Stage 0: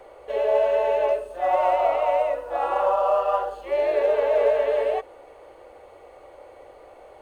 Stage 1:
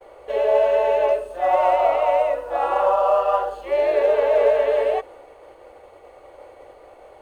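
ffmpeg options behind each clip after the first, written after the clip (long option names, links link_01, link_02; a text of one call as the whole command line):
ffmpeg -i in.wav -af "agate=range=-33dB:threshold=-44dB:ratio=3:detection=peak,volume=3dB" out.wav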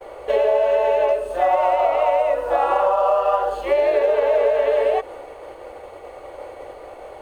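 ffmpeg -i in.wav -af "acompressor=threshold=-23dB:ratio=6,volume=8dB" out.wav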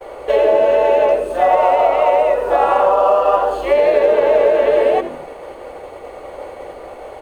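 ffmpeg -i in.wav -filter_complex "[0:a]asplit=5[link_01][link_02][link_03][link_04][link_05];[link_02]adelay=83,afreqshift=-95,volume=-11.5dB[link_06];[link_03]adelay=166,afreqshift=-190,volume=-20.6dB[link_07];[link_04]adelay=249,afreqshift=-285,volume=-29.7dB[link_08];[link_05]adelay=332,afreqshift=-380,volume=-38.9dB[link_09];[link_01][link_06][link_07][link_08][link_09]amix=inputs=5:normalize=0,volume=4.5dB" out.wav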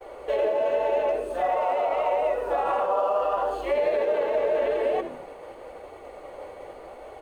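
ffmpeg -i in.wav -af "alimiter=limit=-8dB:level=0:latency=1:release=17,flanger=delay=2.6:depth=7.7:regen=-53:speed=0.84:shape=sinusoidal,volume=-5dB" out.wav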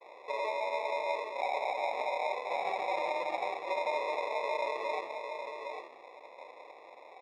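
ffmpeg -i in.wav -af "acrusher=samples=29:mix=1:aa=0.000001,highpass=570,lowpass=2600,aecho=1:1:799:0.473,volume=-7.5dB" out.wav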